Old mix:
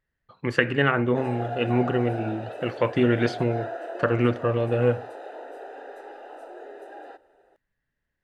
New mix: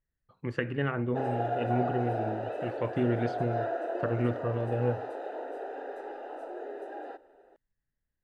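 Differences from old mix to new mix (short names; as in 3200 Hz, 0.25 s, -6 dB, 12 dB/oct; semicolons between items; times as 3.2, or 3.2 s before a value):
speech -11.0 dB; master: add tilt -2 dB/oct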